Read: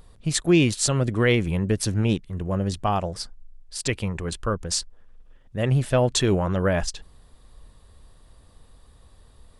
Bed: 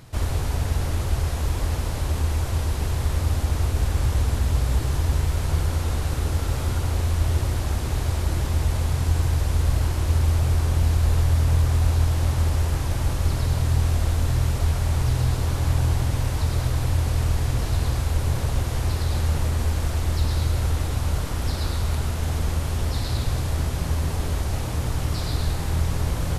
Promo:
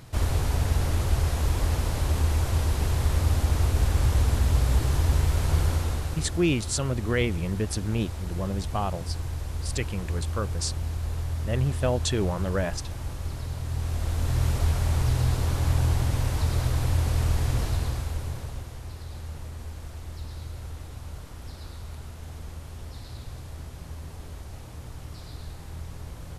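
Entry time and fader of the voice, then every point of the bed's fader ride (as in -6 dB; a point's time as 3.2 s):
5.90 s, -5.5 dB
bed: 5.69 s -0.5 dB
6.46 s -10.5 dB
13.62 s -10.5 dB
14.46 s -2 dB
17.59 s -2 dB
18.79 s -15 dB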